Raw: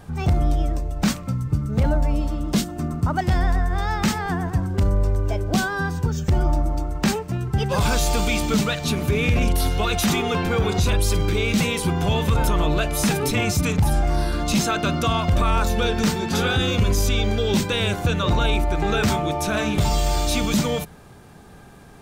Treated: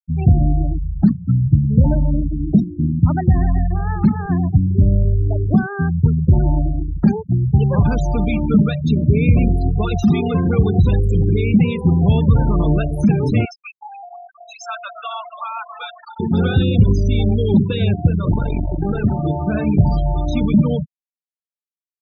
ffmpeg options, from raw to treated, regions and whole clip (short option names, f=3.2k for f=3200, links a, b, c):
-filter_complex "[0:a]asettb=1/sr,asplit=3[a][b][c];[a]atrim=end=13.454[d];[b]atrim=start=13.45:end=16.2,asetpts=PTS-STARTPTS,afade=t=in:d=0.004:c=qsin,afade=t=out:st=2.746:d=0.004:c=qsin,highpass=f=740:w=0.5412,highpass=f=740:w=1.3066,asplit=6[e][f][g][h][i][j];[f]adelay=273,afreqshift=-44,volume=-8dB[k];[g]adelay=546,afreqshift=-88,volume=-14.9dB[l];[h]adelay=819,afreqshift=-132,volume=-21.9dB[m];[i]adelay=1092,afreqshift=-176,volume=-28.8dB[n];[j]adelay=1365,afreqshift=-220,volume=-35.7dB[o];[e][k][l][m][n][o]amix=inputs=6:normalize=0,atrim=end_sample=121275[p];[c]atrim=start=16.196[q];[d][p]acrossfade=d=0.004:c1=hsin:c2=qsin[r];[r][q]acrossfade=d=0.004:c1=qsin:c2=hsin,asettb=1/sr,asplit=3[s][t][u];[s]atrim=end=18.074[v];[t]atrim=start=18.07:end=19.25,asetpts=PTS-STARTPTS,afade=t=in:d=0.004:c=qsin,afade=t=out:st=1.176:d=0.004:c=qsin,asuperstop=centerf=4500:order=4:qfactor=2.8,aeval=exprs='clip(val(0),-1,0.0376)':c=same[w];[u]atrim=start=19.246[x];[v][w]acrossfade=d=0.004:c1=hsin:c2=qsin[y];[y][x]acrossfade=d=0.004:c1=qsin:c2=hsin,afftfilt=real='re*gte(hypot(re,im),0.141)':imag='im*gte(hypot(re,im),0.141)':win_size=1024:overlap=0.75,equalizer=f=140:w=0.42:g=13.5,volume=-3.5dB"